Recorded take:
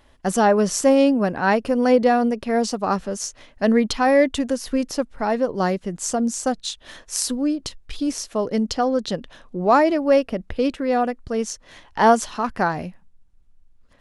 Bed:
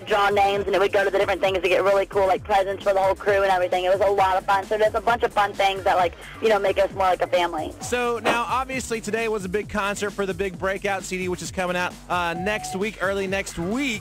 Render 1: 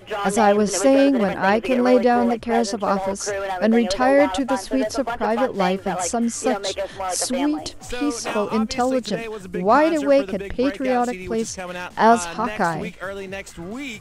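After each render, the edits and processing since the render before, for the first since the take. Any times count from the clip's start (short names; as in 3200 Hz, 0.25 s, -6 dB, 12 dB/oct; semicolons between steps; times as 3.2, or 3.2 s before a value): add bed -6.5 dB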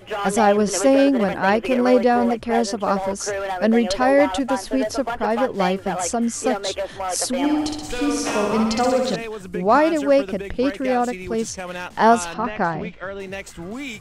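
7.37–9.16 flutter echo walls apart 10.8 m, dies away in 0.96 s; 12.34–13.2 air absorption 170 m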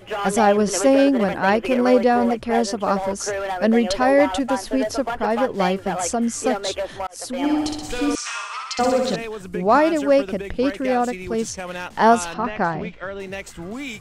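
7.07–7.51 fade in; 8.15–8.79 elliptic band-pass 1200–8400 Hz, stop band 80 dB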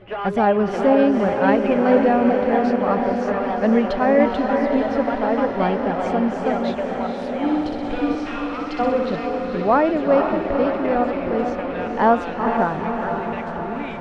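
air absorption 370 m; diffused feedback echo 0.471 s, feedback 67%, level -5 dB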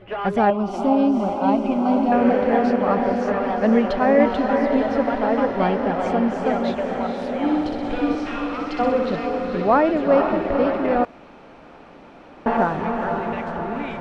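0.5–2.12 fixed phaser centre 470 Hz, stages 6; 11.05–12.46 room tone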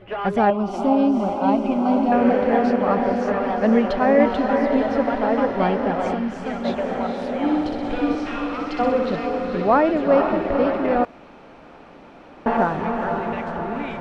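6.14–6.65 bell 570 Hz -9 dB 2.5 oct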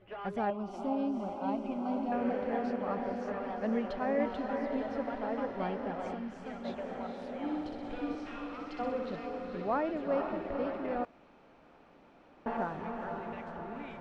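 gain -15 dB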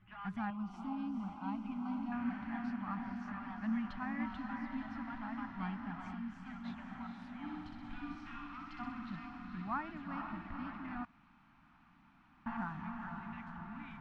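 Chebyshev band-stop 210–1100 Hz, order 2; high shelf 3000 Hz -9 dB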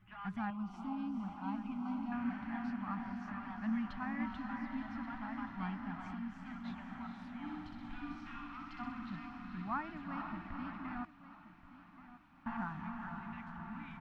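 feedback echo 1.128 s, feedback 30%, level -15 dB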